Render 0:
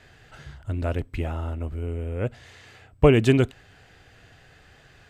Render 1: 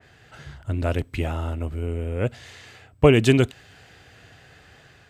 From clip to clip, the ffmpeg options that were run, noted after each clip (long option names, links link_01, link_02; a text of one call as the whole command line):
ffmpeg -i in.wav -af "highpass=62,dynaudnorm=framelen=140:gausssize=5:maxgain=3dB,adynamicequalizer=threshold=0.00794:dfrequency=2400:dqfactor=0.7:tfrequency=2400:tqfactor=0.7:attack=5:release=100:ratio=0.375:range=2.5:mode=boostabove:tftype=highshelf" out.wav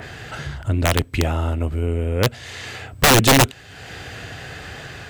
ffmpeg -i in.wav -filter_complex "[0:a]asplit=2[link_01][link_02];[link_02]acompressor=mode=upward:threshold=-23dB:ratio=2.5,volume=2dB[link_03];[link_01][link_03]amix=inputs=2:normalize=0,aeval=exprs='(mod(1.78*val(0)+1,2)-1)/1.78':channel_layout=same,volume=-1.5dB" out.wav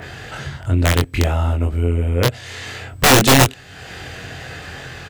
ffmpeg -i in.wav -filter_complex "[0:a]asplit=2[link_01][link_02];[link_02]adelay=23,volume=-2.5dB[link_03];[link_01][link_03]amix=inputs=2:normalize=0" out.wav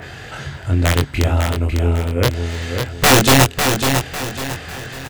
ffmpeg -i in.wav -af "aecho=1:1:550|1100|1650|2200:0.501|0.185|0.0686|0.0254" out.wav